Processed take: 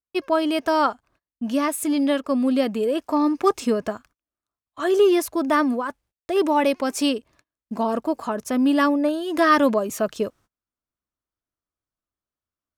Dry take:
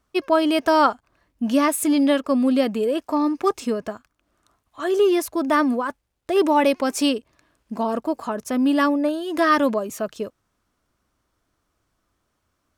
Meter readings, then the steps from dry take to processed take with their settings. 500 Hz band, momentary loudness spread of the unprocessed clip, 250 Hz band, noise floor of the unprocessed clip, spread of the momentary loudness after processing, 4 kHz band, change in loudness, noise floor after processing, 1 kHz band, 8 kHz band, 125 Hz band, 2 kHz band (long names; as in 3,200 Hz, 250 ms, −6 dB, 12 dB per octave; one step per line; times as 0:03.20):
−0.5 dB, 11 LU, −1.0 dB, −74 dBFS, 10 LU, −1.0 dB, −0.5 dB, below −85 dBFS, −1.0 dB, −1.5 dB, can't be measured, −0.5 dB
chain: noise gate −52 dBFS, range −29 dB
speech leveller 2 s
level −1 dB